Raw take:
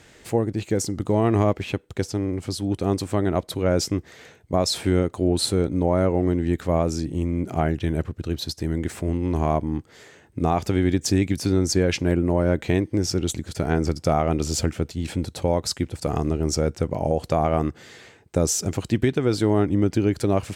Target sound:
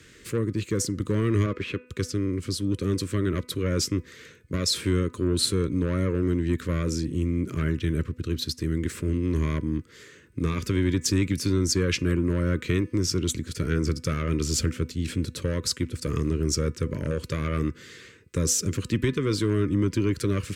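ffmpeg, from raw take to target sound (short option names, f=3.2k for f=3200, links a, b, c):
-filter_complex "[0:a]acrossover=split=120|1500[a][b][c];[b]asoftclip=type=tanh:threshold=-19dB[d];[a][d][c]amix=inputs=3:normalize=0,asettb=1/sr,asplit=3[e][f][g];[e]atrim=end=1.464[h];[f]atrim=start=1.46:end=1.87,asetpts=PTS-STARTPTS,afade=t=in:d=0.004:c=qsin,afade=t=out:st=0.406:d=0.004:c=qsin,asplit=2[i][j];[j]highpass=f=720:p=1,volume=15dB,asoftclip=type=tanh:threshold=-14dB[k];[i][k]amix=inputs=2:normalize=0,lowpass=f=1k:p=1,volume=-6dB[l];[g]atrim=start=1.866[m];[h][l]acrossfade=d=0.004:c1=hsin:c2=qsin[n];[n][m]acrossfade=d=0.004:c1=qsin:c2=hsin,asuperstop=centerf=750:order=4:qfactor=1.2,bandreject=f=249:t=h:w=4,bandreject=f=498:t=h:w=4,bandreject=f=747:t=h:w=4,bandreject=f=996:t=h:w=4,bandreject=f=1.245k:t=h:w=4,bandreject=f=1.494k:t=h:w=4,bandreject=f=1.743k:t=h:w=4,bandreject=f=1.992k:t=h:w=4,bandreject=f=2.241k:t=h:w=4,bandreject=f=2.49k:t=h:w=4,bandreject=f=2.739k:t=h:w=4"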